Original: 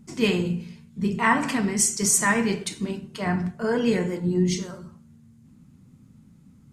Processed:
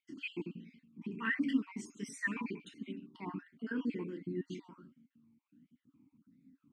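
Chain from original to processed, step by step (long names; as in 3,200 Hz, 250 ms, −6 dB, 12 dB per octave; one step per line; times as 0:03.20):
time-frequency cells dropped at random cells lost 37%
formant filter swept between two vowels i-u 1.4 Hz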